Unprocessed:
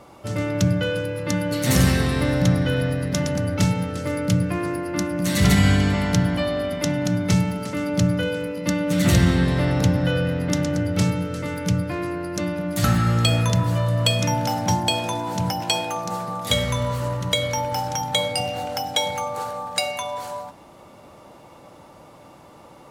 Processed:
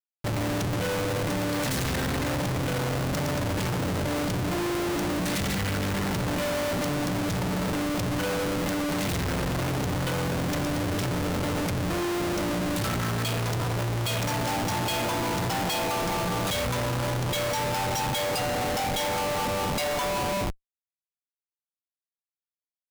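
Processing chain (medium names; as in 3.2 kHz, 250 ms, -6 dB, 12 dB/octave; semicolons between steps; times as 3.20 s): hum notches 60/120/180/240 Hz; Schroeder reverb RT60 0.31 s, combs from 33 ms, DRR 17 dB; Schmitt trigger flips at -32 dBFS; trim -4 dB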